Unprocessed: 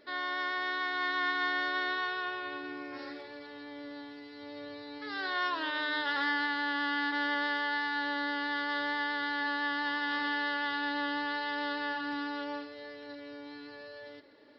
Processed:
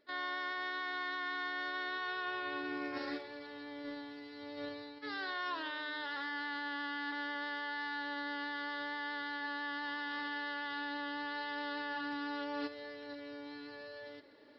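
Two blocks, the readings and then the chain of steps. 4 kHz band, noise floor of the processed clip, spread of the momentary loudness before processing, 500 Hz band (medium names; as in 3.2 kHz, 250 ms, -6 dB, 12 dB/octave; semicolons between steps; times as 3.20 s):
-6.5 dB, -50 dBFS, 16 LU, -4.0 dB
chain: gate -41 dBFS, range -14 dB; peak limiter -27 dBFS, peak gain reduction 7 dB; reverse; compression 10:1, threshold -49 dBFS, peak gain reduction 17 dB; reverse; trim +12.5 dB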